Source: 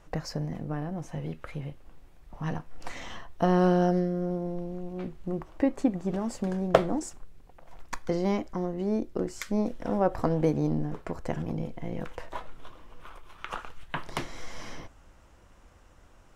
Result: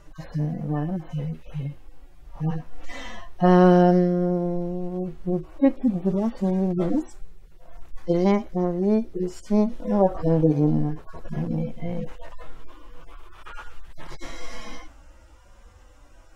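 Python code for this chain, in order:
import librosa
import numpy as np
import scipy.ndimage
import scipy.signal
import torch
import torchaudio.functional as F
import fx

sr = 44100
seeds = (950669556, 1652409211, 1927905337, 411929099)

y = fx.hpss_only(x, sr, part='harmonic')
y = F.gain(torch.from_numpy(y), 7.5).numpy()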